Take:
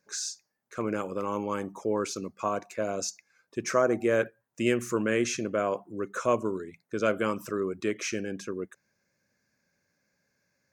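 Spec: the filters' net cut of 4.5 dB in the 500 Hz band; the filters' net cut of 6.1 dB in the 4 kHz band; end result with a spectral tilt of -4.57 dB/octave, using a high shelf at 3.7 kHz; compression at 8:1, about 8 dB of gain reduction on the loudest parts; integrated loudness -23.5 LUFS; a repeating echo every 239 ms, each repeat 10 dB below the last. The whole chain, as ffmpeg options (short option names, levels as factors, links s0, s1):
-af "equalizer=f=500:t=o:g=-5.5,highshelf=f=3700:g=-5.5,equalizer=f=4000:t=o:g=-4.5,acompressor=threshold=0.0316:ratio=8,aecho=1:1:239|478|717|956:0.316|0.101|0.0324|0.0104,volume=5.01"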